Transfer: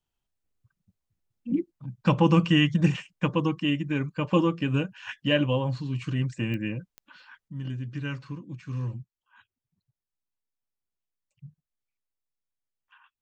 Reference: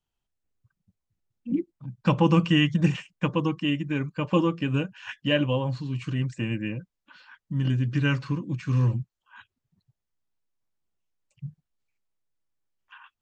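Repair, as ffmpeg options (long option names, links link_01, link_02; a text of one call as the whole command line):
ffmpeg -i in.wav -af "adeclick=threshold=4,asetnsamples=nb_out_samples=441:pad=0,asendcmd='7.48 volume volume 9dB',volume=0dB" out.wav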